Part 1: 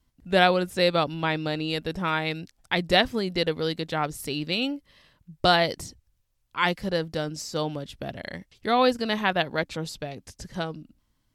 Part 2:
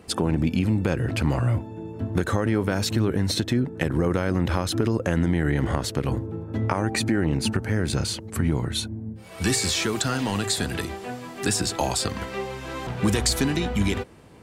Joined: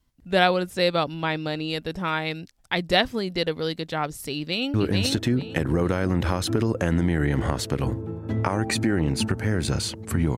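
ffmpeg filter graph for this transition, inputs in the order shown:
ffmpeg -i cue0.wav -i cue1.wav -filter_complex "[0:a]apad=whole_dur=10.37,atrim=end=10.37,atrim=end=4.742[link_01];[1:a]atrim=start=2.988:end=8.62[link_02];[link_01][link_02]acrossfade=duration=0.004:curve1=hsin:curve2=hsin,asplit=2[link_03][link_04];[link_04]afade=type=in:start_time=4.36:duration=0.01,afade=type=out:start_time=4.74:duration=0.01,aecho=0:1:440|880|1320:0.749894|0.149979|0.0299958[link_05];[link_03][link_05]amix=inputs=2:normalize=0" out.wav

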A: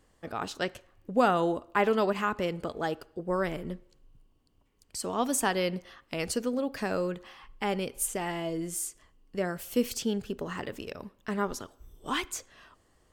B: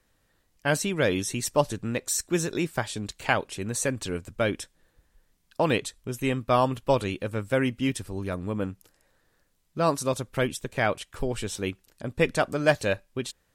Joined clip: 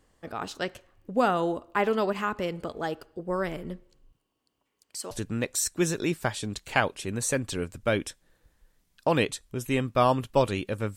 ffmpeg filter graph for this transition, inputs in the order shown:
ffmpeg -i cue0.wav -i cue1.wav -filter_complex "[0:a]asettb=1/sr,asplit=3[link_01][link_02][link_03];[link_01]atrim=end=4.124[link_04];[link_02]atrim=start=4.12:end=5.11,asetpts=PTS-STARTPTS,afade=type=in:duration=0.004:curve=qsin,afade=type=out:start_time=0.986:duration=0.004:curve=qsin,highpass=frequency=540:poles=1[link_05];[link_03]atrim=start=5.106[link_06];[link_04][link_05]acrossfade=duration=0.004:curve1=hsin:curve2=qsin[link_07];[link_07][link_06]acrossfade=duration=0.004:curve1=qsin:curve2=hsin,apad=whole_dur=10.96,atrim=end=10.96,atrim=end=5.112[link_08];[1:a]atrim=start=1.638:end=7.49[link_09];[link_08][link_09]acrossfade=duration=0.004:curve1=hsin:curve2=hsin" out.wav

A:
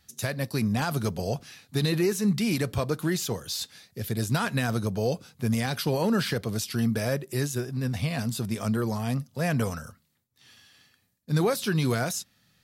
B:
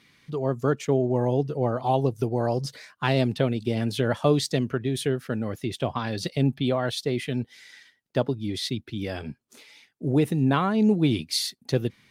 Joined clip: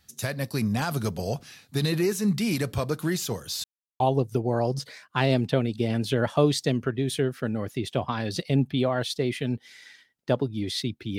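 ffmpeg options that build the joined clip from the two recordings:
ffmpeg -i cue0.wav -i cue1.wav -filter_complex "[0:a]apad=whole_dur=11.18,atrim=end=11.18,asplit=2[link_01][link_02];[link_01]atrim=end=3.64,asetpts=PTS-STARTPTS,afade=type=out:start_time=3.636:duration=0.004:curve=hsin[link_03];[link_02]atrim=start=3.64:end=4,asetpts=PTS-STARTPTS,volume=0[link_04];[1:a]atrim=start=1.87:end=9.05,asetpts=PTS-STARTPTS,afade=type=in:duration=0.004:curve=hsin[link_05];[link_03][link_04][link_05]concat=n=3:v=0:a=1" out.wav

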